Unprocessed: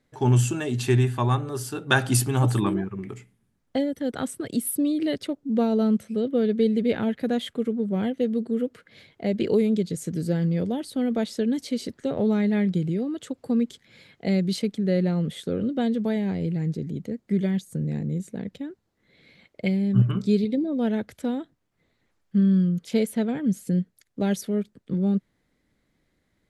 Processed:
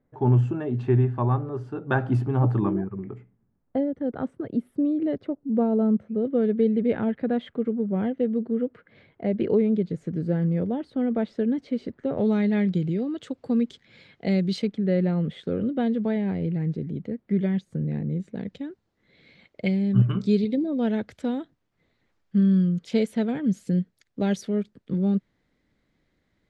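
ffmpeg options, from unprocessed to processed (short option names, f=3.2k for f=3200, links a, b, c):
-af "asetnsamples=n=441:p=0,asendcmd='6.25 lowpass f 1800;12.18 lowpass f 4700;14.67 lowpass f 2700;18.35 lowpass f 5600',lowpass=1.1k"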